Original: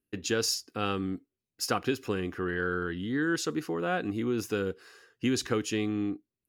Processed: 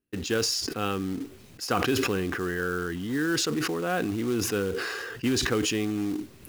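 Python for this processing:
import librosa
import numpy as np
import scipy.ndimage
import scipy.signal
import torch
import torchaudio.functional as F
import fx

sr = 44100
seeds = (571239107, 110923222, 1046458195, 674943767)

y = fx.high_shelf(x, sr, hz=5600.0, db=-8.5)
y = fx.quant_float(y, sr, bits=2)
y = fx.sustainer(y, sr, db_per_s=22.0)
y = y * librosa.db_to_amplitude(1.5)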